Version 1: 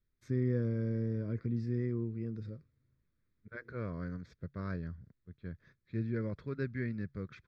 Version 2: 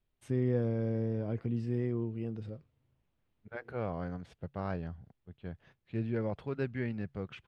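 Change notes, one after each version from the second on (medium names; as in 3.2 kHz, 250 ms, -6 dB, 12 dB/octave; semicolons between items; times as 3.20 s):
master: remove static phaser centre 2.9 kHz, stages 6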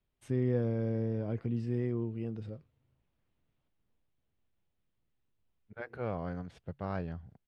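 second voice: entry +2.25 s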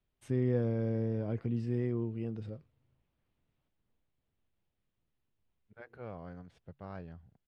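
second voice -8.5 dB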